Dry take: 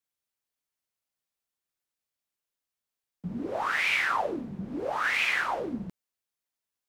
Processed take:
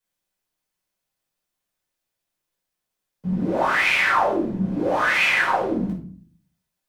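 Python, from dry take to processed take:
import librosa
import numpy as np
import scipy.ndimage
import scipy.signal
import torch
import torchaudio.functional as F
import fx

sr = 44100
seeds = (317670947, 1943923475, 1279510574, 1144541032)

y = fx.room_shoebox(x, sr, seeds[0], volume_m3=430.0, walls='furnished', distance_m=5.0)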